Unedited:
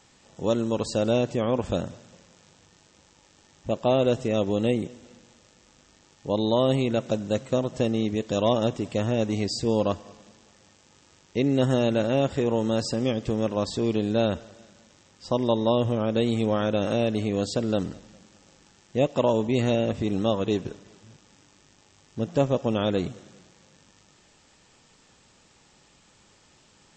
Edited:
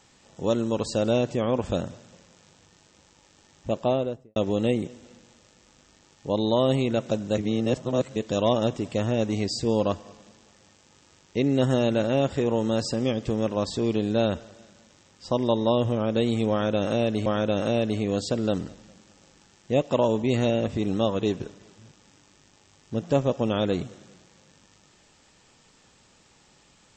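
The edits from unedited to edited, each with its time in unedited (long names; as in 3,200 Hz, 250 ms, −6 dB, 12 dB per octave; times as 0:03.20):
0:03.74–0:04.36: fade out and dull
0:07.38–0:08.16: reverse
0:16.51–0:17.26: repeat, 2 plays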